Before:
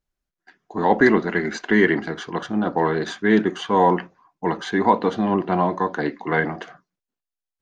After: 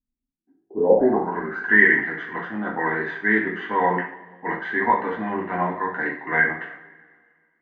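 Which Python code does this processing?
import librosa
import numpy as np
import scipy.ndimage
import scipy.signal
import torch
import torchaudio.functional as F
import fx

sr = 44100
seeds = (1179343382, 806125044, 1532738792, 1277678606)

y = fx.rev_double_slope(x, sr, seeds[0], early_s=0.46, late_s=2.0, knee_db=-20, drr_db=-3.0)
y = fx.filter_sweep_lowpass(y, sr, from_hz=250.0, to_hz=1900.0, start_s=0.43, end_s=1.79, q=7.2)
y = y * 10.0 ** (-11.0 / 20.0)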